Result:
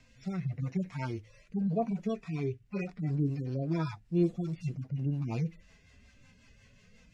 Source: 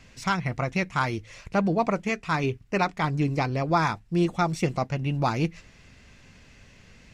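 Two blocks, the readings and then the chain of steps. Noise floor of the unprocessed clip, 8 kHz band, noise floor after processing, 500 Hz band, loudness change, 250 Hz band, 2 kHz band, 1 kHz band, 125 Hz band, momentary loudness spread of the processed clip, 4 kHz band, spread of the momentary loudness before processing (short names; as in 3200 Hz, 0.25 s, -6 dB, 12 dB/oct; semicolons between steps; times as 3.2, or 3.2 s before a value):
-54 dBFS, under -15 dB, -62 dBFS, -8.5 dB, -7.5 dB, -5.0 dB, -19.0 dB, -18.0 dB, -4.5 dB, 7 LU, -17.5 dB, 4 LU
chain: median-filter separation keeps harmonic; rotary speaker horn 0.85 Hz, later 5.5 Hz, at 2.46; gain -3 dB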